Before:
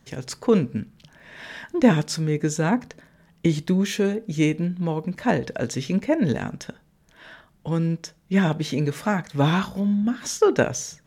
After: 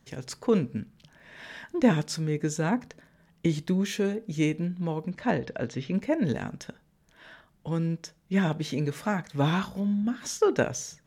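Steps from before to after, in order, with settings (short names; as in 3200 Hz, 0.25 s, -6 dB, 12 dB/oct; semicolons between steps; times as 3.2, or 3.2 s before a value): 5.1–5.93 LPF 7000 Hz -> 3100 Hz 12 dB/oct; gain -5 dB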